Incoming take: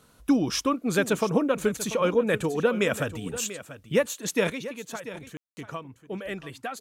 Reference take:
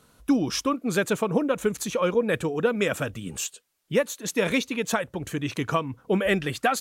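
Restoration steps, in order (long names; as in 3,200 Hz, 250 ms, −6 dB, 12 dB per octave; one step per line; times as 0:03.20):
ambience match 0:05.37–0:05.57
echo removal 689 ms −14 dB
level 0 dB, from 0:04.50 +11.5 dB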